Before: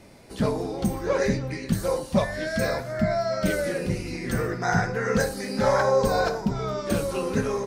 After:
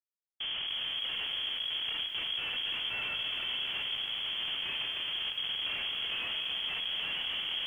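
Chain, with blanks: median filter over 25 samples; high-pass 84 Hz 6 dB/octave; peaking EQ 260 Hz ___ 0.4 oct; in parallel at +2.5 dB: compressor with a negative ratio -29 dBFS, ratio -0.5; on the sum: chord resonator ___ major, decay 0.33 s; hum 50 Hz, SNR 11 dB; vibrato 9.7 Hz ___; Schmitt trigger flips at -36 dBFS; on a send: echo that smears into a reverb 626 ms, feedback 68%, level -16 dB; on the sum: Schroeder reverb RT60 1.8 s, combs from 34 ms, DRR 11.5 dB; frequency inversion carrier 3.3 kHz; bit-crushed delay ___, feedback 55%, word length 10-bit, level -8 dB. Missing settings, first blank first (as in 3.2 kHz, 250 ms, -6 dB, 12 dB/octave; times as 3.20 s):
+2 dB, B2, 70 cents, 273 ms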